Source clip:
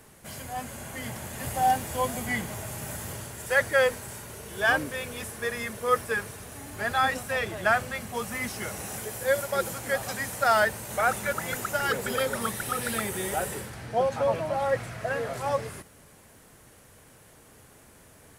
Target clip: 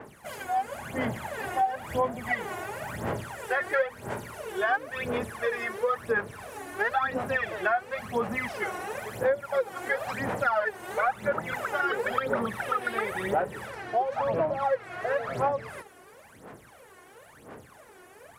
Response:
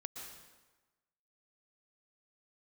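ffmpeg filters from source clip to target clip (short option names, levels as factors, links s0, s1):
-filter_complex "[0:a]highpass=f=500:p=1,highshelf=f=2300:g=-9,acrossover=split=2800[s0][s1];[s0]acontrast=39[s2];[s1]alimiter=level_in=7.94:limit=0.0631:level=0:latency=1:release=30,volume=0.126[s3];[s2][s3]amix=inputs=2:normalize=0,aphaser=in_gain=1:out_gain=1:delay=2.8:decay=0.76:speed=0.97:type=sinusoidal,acompressor=threshold=0.0631:ratio=5,adynamicequalizer=threshold=0.00398:dfrequency=4900:dqfactor=0.7:tfrequency=4900:tqfactor=0.7:attack=5:release=100:ratio=0.375:range=2.5:mode=cutabove:tftype=highshelf"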